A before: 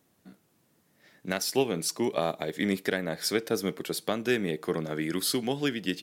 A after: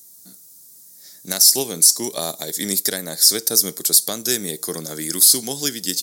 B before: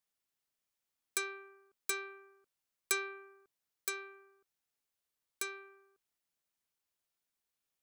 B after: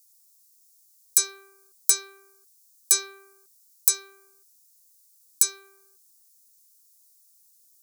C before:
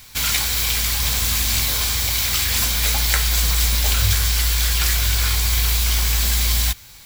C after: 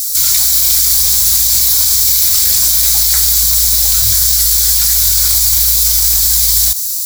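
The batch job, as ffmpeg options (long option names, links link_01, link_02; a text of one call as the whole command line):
ffmpeg -i in.wav -filter_complex "[0:a]aexciter=amount=11:drive=8.9:freq=4300,acrossover=split=3600[link_01][link_02];[link_02]acompressor=threshold=-4dB:ratio=4:attack=1:release=60[link_03];[link_01][link_03]amix=inputs=2:normalize=0,alimiter=limit=-1.5dB:level=0:latency=1:release=22" out.wav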